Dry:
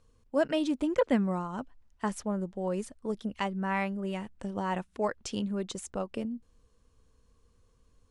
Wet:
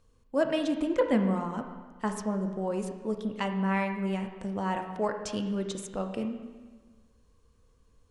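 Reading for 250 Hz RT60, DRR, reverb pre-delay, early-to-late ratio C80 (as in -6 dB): 1.4 s, 5.0 dB, 7 ms, 8.5 dB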